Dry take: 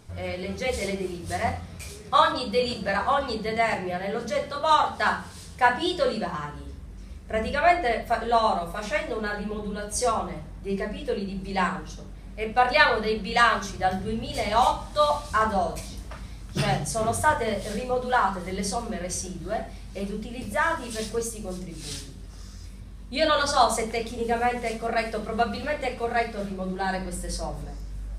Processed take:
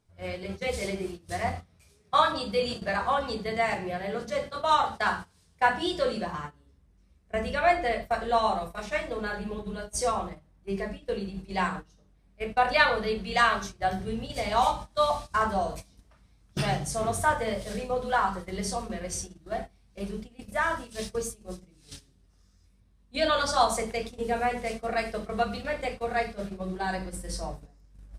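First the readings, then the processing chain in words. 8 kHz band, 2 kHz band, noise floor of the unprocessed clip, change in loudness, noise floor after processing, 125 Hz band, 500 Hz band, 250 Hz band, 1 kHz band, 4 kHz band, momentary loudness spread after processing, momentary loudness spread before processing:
−3.5 dB, −3.0 dB, −41 dBFS, −3.0 dB, −62 dBFS, −4.0 dB, −3.0 dB, −3.5 dB, −3.0 dB, −3.0 dB, 13 LU, 16 LU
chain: noise gate −32 dBFS, range −18 dB
level −3 dB

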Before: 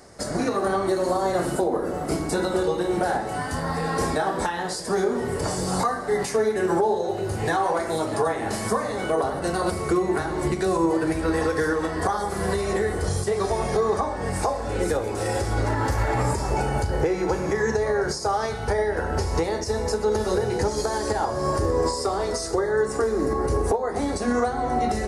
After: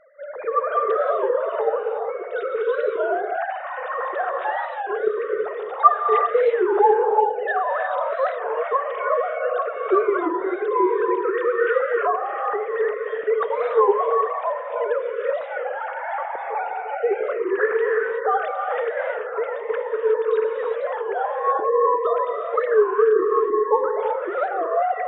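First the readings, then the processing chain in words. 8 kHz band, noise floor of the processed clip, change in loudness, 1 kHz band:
below −40 dB, −31 dBFS, +2.5 dB, +4.0 dB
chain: three sine waves on the formant tracks
dynamic equaliser 1,300 Hz, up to +7 dB, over −42 dBFS, Q 2.6
reverb whose tail is shaped and stops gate 400 ms rising, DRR 1.5 dB
wow of a warped record 33 1/3 rpm, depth 160 cents
level −1 dB

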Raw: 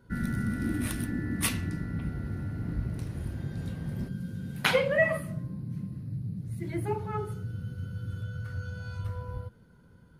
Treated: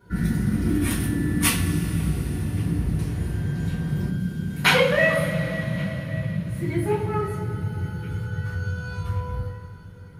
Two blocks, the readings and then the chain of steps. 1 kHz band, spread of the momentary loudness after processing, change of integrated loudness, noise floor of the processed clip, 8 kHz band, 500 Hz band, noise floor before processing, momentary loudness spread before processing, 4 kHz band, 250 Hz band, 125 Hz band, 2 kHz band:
+8.0 dB, 11 LU, +8.0 dB, −40 dBFS, +8.5 dB, +6.0 dB, −57 dBFS, 11 LU, +9.5 dB, +8.5 dB, +8.5 dB, +8.0 dB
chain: feedback echo with a band-pass in the loop 1,125 ms, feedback 57%, band-pass 2,100 Hz, level −24 dB
coupled-rooms reverb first 0.28 s, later 4.9 s, from −21 dB, DRR −8.5 dB

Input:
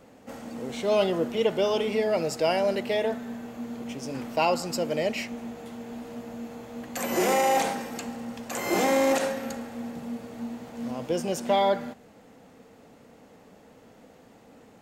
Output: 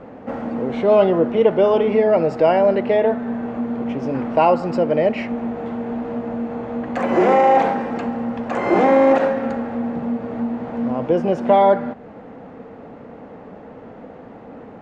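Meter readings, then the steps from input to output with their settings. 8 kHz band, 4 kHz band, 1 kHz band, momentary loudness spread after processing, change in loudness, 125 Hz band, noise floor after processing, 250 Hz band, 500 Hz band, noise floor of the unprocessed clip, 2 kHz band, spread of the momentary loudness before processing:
below −15 dB, −4.0 dB, +9.5 dB, 12 LU, +9.0 dB, +9.5 dB, −40 dBFS, +10.5 dB, +10.0 dB, −54 dBFS, +4.5 dB, 16 LU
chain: low-pass filter 1,500 Hz 12 dB per octave
low-shelf EQ 150 Hz −3 dB
in parallel at +1.5 dB: downward compressor, threshold −39 dBFS, peak gain reduction 18.5 dB
on the sum: level +8.5 dB

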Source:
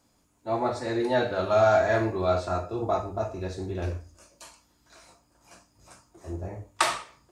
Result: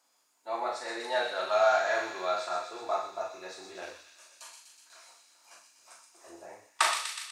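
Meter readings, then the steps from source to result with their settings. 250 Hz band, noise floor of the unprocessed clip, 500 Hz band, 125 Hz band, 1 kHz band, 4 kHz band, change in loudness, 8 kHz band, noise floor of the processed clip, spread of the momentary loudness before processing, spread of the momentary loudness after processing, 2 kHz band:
−16.0 dB, −67 dBFS, −6.0 dB, below −30 dB, −2.5 dB, +1.5 dB, −3.5 dB, +1.5 dB, −71 dBFS, 16 LU, 23 LU, 0.0 dB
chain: high-pass filter 780 Hz 12 dB per octave
double-tracking delay 38 ms −5.5 dB
on a send: delay with a high-pass on its return 123 ms, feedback 73%, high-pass 2,600 Hz, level −5 dB
on the sum: level −1.5 dB

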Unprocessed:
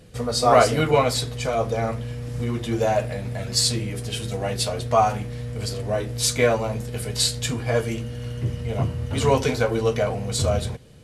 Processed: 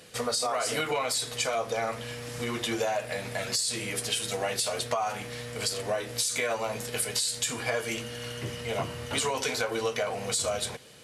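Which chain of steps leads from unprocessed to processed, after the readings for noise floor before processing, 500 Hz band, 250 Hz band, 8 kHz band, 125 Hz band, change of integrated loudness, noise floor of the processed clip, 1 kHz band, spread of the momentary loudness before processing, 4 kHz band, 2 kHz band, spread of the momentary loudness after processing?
−33 dBFS, −8.5 dB, −10.0 dB, −1.5 dB, −15.5 dB, −6.5 dB, −40 dBFS, −8.5 dB, 10 LU, −3.5 dB, −2.0 dB, 7 LU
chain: high-pass filter 1,100 Hz 6 dB per octave
dynamic equaliser 8,700 Hz, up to +6 dB, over −40 dBFS, Q 1.2
brickwall limiter −18.5 dBFS, peak gain reduction 13.5 dB
downward compressor, threshold −33 dBFS, peak gain reduction 9.5 dB
level +7 dB

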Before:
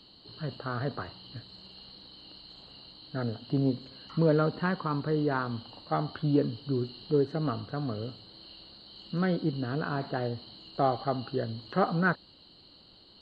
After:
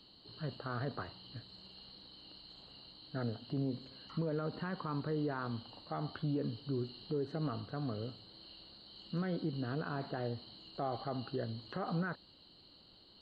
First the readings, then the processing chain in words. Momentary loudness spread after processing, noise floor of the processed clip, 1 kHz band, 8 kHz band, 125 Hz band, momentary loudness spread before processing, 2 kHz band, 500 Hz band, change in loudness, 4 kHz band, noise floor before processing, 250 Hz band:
16 LU, −61 dBFS, −10.0 dB, can't be measured, −7.5 dB, 20 LU, −10.5 dB, −10.0 dB, −9.0 dB, −6.0 dB, −56 dBFS, −8.5 dB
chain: brickwall limiter −23 dBFS, peak gain reduction 10.5 dB
level −5 dB

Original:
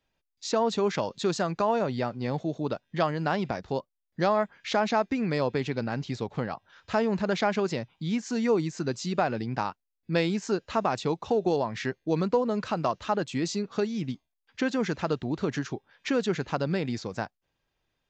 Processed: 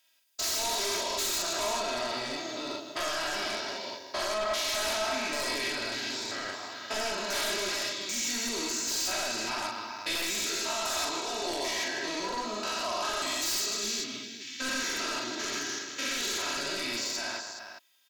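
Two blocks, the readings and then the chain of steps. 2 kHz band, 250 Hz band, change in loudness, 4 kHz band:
+3.0 dB, −12.0 dB, −1.5 dB, +9.5 dB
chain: spectrum averaged block by block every 200 ms
first difference
multi-tap delay 42/155/261/360/420 ms −3/−8/−13/−12/−10 dB
sine wavefolder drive 14 dB, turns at −28.5 dBFS
comb filter 3.1 ms, depth 69%

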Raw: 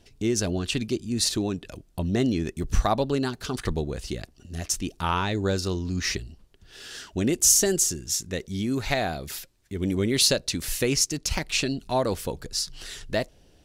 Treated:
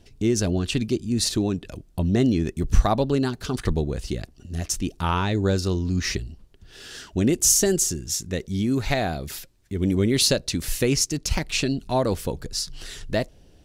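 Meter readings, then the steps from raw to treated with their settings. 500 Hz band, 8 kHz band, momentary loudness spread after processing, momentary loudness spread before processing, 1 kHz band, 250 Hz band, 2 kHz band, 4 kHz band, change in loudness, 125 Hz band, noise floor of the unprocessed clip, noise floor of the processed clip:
+2.5 dB, 0.0 dB, 13 LU, 15 LU, +1.0 dB, +4.0 dB, 0.0 dB, 0.0 dB, +2.0 dB, +5.0 dB, −58 dBFS, −54 dBFS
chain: low-shelf EQ 390 Hz +5.5 dB

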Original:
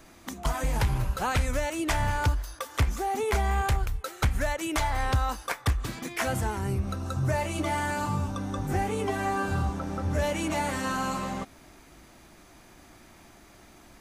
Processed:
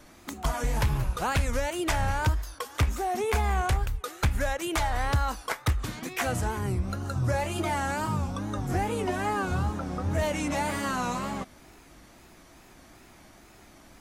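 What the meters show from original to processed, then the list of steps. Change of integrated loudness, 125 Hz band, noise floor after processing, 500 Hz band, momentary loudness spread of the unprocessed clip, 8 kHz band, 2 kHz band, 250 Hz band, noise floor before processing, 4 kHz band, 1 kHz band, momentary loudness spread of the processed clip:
0.0 dB, 0.0 dB, −53 dBFS, 0.0 dB, 5 LU, 0.0 dB, 0.0 dB, 0.0 dB, −54 dBFS, 0.0 dB, 0.0 dB, 5 LU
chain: tape wow and flutter 130 cents

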